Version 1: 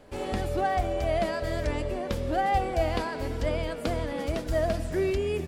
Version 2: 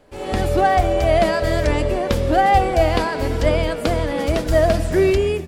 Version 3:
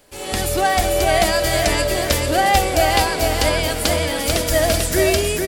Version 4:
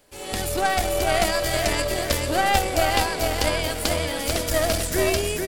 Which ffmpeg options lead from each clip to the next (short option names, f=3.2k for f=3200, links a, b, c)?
-af "bandreject=f=50:t=h:w=6,bandreject=f=100:t=h:w=6,bandreject=f=150:t=h:w=6,bandreject=f=200:t=h:w=6,bandreject=f=250:t=h:w=6,dynaudnorm=f=120:g=5:m=11.5dB"
-filter_complex "[0:a]crystalizer=i=6.5:c=0,asplit=2[a][b];[b]aecho=0:1:443|886|1329|1772|2215:0.668|0.234|0.0819|0.0287|0.01[c];[a][c]amix=inputs=2:normalize=0,volume=-4dB"
-af "aeval=exprs='0.891*(cos(1*acos(clip(val(0)/0.891,-1,1)))-cos(1*PI/2))+0.141*(cos(4*acos(clip(val(0)/0.891,-1,1)))-cos(4*PI/2))':c=same,volume=-5.5dB"